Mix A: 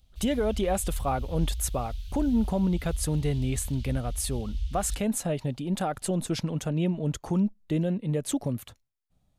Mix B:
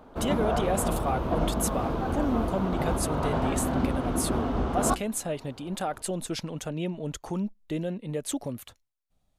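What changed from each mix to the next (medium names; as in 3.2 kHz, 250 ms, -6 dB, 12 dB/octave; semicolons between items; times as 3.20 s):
background: remove inverse Chebyshev band-stop 170–1100 Hz, stop band 60 dB; master: add peaking EQ 120 Hz -8 dB 2.2 oct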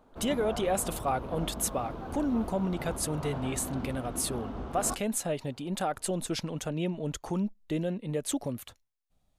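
background -10.5 dB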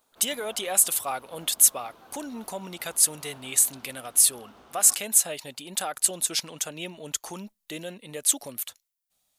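background -9.0 dB; master: add tilt EQ +4.5 dB/octave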